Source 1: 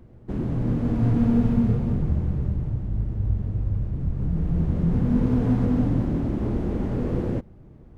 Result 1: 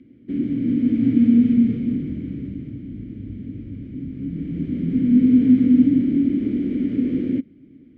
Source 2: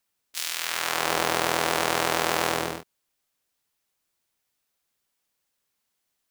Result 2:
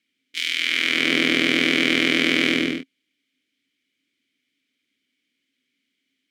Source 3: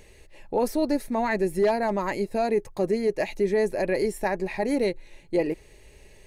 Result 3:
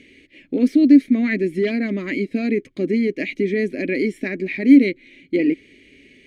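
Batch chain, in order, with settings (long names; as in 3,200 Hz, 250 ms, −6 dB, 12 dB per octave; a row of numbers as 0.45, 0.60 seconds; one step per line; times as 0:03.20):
formant filter i
loudness normalisation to −19 LKFS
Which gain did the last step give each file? +14.0, +21.5, +19.5 decibels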